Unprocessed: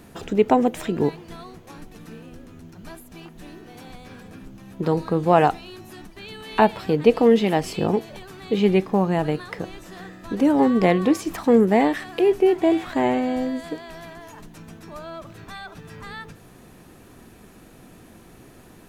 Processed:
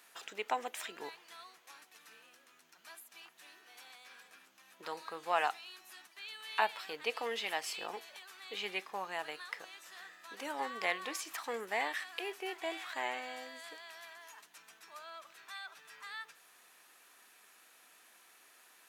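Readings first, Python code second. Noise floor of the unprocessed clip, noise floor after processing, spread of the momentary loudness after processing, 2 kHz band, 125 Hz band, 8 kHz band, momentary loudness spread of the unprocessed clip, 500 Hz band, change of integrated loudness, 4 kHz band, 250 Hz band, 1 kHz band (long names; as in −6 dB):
−48 dBFS, −64 dBFS, 20 LU, −6.5 dB, below −40 dB, −5.5 dB, 22 LU, −22.5 dB, −19.0 dB, −5.5 dB, −32.5 dB, −13.5 dB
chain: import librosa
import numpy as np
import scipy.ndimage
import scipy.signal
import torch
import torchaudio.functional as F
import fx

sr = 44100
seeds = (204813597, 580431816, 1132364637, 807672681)

y = scipy.signal.sosfilt(scipy.signal.butter(2, 1300.0, 'highpass', fs=sr, output='sos'), x)
y = y * 10.0 ** (-5.5 / 20.0)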